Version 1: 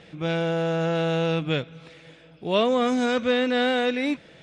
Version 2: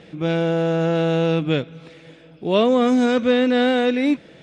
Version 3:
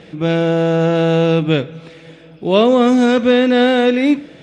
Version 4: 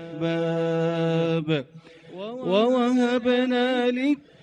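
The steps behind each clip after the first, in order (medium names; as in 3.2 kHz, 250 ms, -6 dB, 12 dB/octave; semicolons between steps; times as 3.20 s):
peaking EQ 290 Hz +6.5 dB 1.8 oct; trim +1 dB
reverberation RT60 0.65 s, pre-delay 22 ms, DRR 17.5 dB; trim +5 dB
reverse echo 335 ms -14 dB; reverb removal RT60 0.53 s; trim -8 dB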